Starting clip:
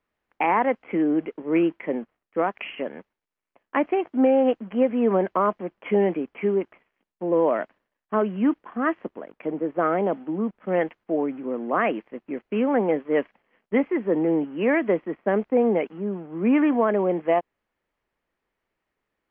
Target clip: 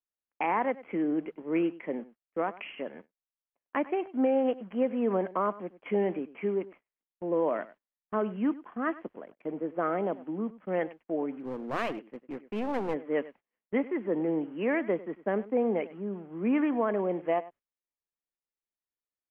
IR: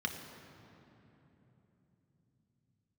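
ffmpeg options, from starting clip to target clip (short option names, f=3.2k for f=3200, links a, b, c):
-filter_complex "[0:a]aecho=1:1:98:0.126,asplit=3[a][b][c];[a]afade=t=out:st=11.34:d=0.02[d];[b]aeval=exprs='clip(val(0),-1,0.0376)':c=same,afade=t=in:st=11.34:d=0.02,afade=t=out:st=12.93:d=0.02[e];[c]afade=t=in:st=12.93:d=0.02[f];[d][e][f]amix=inputs=3:normalize=0,agate=range=-18dB:threshold=-43dB:ratio=16:detection=peak,volume=-7dB"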